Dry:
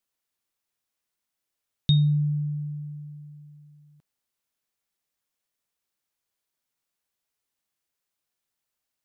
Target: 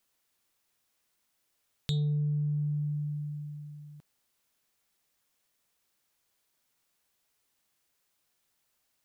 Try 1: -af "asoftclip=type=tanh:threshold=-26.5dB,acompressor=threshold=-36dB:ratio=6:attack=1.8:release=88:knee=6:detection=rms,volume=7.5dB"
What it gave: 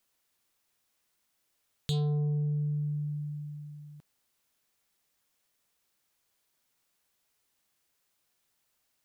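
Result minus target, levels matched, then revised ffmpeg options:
soft clip: distortion +7 dB
-af "asoftclip=type=tanh:threshold=-18.5dB,acompressor=threshold=-36dB:ratio=6:attack=1.8:release=88:knee=6:detection=rms,volume=7.5dB"

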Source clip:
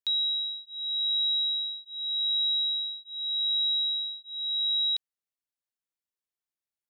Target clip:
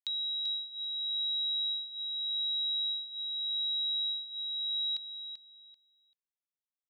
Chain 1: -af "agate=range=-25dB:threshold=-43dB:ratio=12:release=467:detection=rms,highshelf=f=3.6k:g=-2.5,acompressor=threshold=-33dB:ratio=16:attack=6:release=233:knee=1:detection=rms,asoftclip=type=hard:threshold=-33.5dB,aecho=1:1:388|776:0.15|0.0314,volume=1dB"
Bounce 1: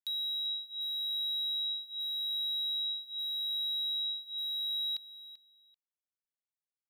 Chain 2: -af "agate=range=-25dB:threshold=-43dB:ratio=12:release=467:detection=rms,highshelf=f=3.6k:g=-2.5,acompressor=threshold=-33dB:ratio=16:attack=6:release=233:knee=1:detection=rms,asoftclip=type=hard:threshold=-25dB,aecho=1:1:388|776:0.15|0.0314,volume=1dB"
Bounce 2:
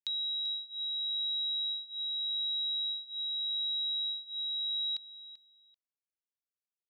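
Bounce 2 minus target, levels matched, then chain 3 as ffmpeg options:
echo-to-direct -7 dB
-af "agate=range=-25dB:threshold=-43dB:ratio=12:release=467:detection=rms,highshelf=f=3.6k:g=-2.5,acompressor=threshold=-33dB:ratio=16:attack=6:release=233:knee=1:detection=rms,asoftclip=type=hard:threshold=-25dB,aecho=1:1:388|776|1164:0.335|0.0703|0.0148,volume=1dB"

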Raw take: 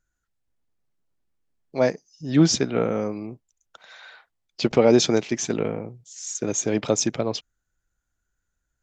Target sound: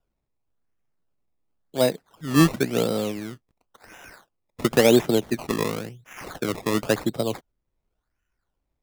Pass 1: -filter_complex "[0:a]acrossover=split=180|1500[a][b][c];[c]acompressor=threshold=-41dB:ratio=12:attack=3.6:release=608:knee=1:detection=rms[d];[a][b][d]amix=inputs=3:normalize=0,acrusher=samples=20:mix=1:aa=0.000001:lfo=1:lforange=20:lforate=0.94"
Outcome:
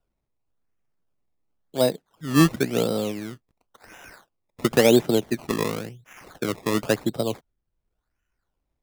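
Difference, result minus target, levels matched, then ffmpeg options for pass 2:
compressor: peak gain reduction +9 dB
-filter_complex "[0:a]acrossover=split=180|1500[a][b][c];[c]acompressor=threshold=-31dB:ratio=12:attack=3.6:release=608:knee=1:detection=rms[d];[a][b][d]amix=inputs=3:normalize=0,acrusher=samples=20:mix=1:aa=0.000001:lfo=1:lforange=20:lforate=0.94"

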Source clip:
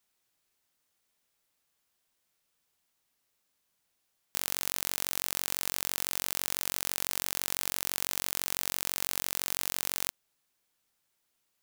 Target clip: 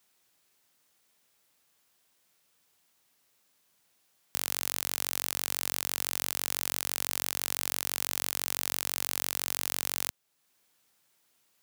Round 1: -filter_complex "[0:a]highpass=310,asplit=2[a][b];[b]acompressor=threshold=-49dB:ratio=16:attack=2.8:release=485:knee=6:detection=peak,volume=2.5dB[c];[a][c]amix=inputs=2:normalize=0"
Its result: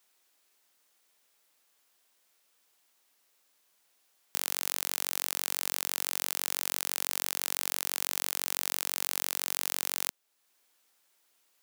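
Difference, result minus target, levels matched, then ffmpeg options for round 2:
125 Hz band -13.0 dB
-filter_complex "[0:a]highpass=88,asplit=2[a][b];[b]acompressor=threshold=-49dB:ratio=16:attack=2.8:release=485:knee=6:detection=peak,volume=2.5dB[c];[a][c]amix=inputs=2:normalize=0"

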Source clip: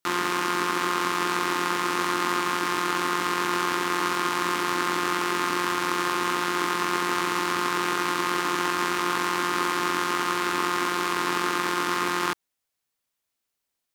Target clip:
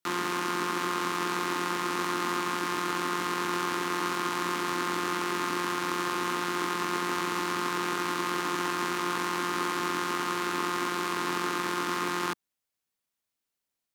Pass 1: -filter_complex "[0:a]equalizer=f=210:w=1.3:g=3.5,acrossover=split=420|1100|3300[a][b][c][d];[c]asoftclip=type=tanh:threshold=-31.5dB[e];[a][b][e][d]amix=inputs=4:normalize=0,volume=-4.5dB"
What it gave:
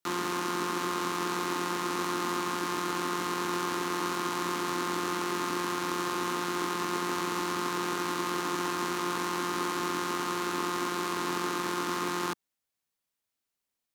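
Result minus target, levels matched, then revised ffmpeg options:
soft clip: distortion +13 dB
-filter_complex "[0:a]equalizer=f=210:w=1.3:g=3.5,acrossover=split=420|1100|3300[a][b][c][d];[c]asoftclip=type=tanh:threshold=-20dB[e];[a][b][e][d]amix=inputs=4:normalize=0,volume=-4.5dB"

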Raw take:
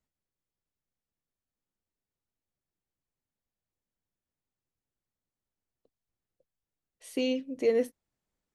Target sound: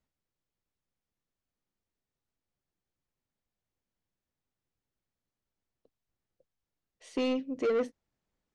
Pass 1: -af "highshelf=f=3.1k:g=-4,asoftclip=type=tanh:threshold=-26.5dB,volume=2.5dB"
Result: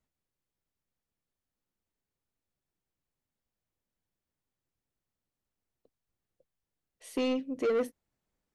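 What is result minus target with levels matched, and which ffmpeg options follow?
8000 Hz band +4.0 dB
-af "lowpass=f=7.3k:w=0.5412,lowpass=f=7.3k:w=1.3066,highshelf=f=3.1k:g=-4,asoftclip=type=tanh:threshold=-26.5dB,volume=2.5dB"

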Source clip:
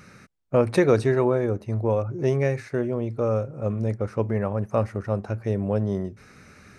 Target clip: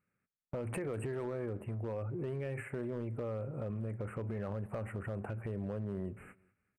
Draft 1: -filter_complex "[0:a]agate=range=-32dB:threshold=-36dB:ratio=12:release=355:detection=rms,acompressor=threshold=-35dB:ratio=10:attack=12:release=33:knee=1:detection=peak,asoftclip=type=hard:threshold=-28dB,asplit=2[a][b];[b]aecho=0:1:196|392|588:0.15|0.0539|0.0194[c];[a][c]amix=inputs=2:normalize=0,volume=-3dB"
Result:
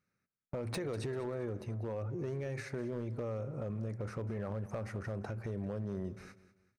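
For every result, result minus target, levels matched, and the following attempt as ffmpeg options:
4000 Hz band +9.0 dB; echo-to-direct +6.5 dB
-filter_complex "[0:a]agate=range=-32dB:threshold=-36dB:ratio=12:release=355:detection=rms,acompressor=threshold=-35dB:ratio=10:attack=12:release=33:knee=1:detection=peak,asuperstop=centerf=4800:order=20:qfactor=1.1,asoftclip=type=hard:threshold=-28dB,asplit=2[a][b];[b]aecho=0:1:196|392|588:0.15|0.0539|0.0194[c];[a][c]amix=inputs=2:normalize=0,volume=-3dB"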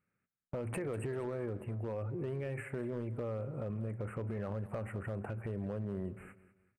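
echo-to-direct +6.5 dB
-filter_complex "[0:a]agate=range=-32dB:threshold=-36dB:ratio=12:release=355:detection=rms,acompressor=threshold=-35dB:ratio=10:attack=12:release=33:knee=1:detection=peak,asuperstop=centerf=4800:order=20:qfactor=1.1,asoftclip=type=hard:threshold=-28dB,asplit=2[a][b];[b]aecho=0:1:196|392:0.0708|0.0255[c];[a][c]amix=inputs=2:normalize=0,volume=-3dB"

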